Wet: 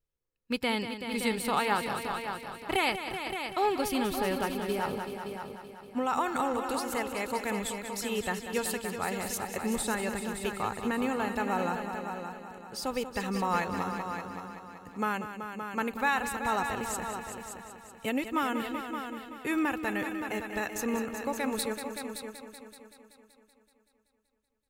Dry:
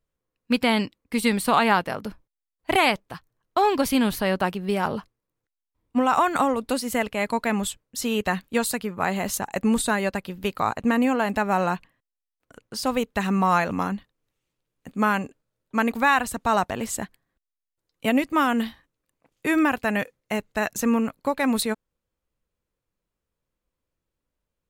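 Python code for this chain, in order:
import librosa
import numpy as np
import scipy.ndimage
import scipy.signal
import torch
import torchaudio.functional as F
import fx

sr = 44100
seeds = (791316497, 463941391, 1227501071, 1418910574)

p1 = fx.peak_eq(x, sr, hz=880.0, db=-2.5, octaves=2.9)
p2 = p1 + 0.33 * np.pad(p1, (int(2.3 * sr / 1000.0), 0))[:len(p1)]
p3 = p2 + fx.echo_heads(p2, sr, ms=190, heads='all three', feedback_pct=44, wet_db=-10.5, dry=0)
y = p3 * 10.0 ** (-7.0 / 20.0)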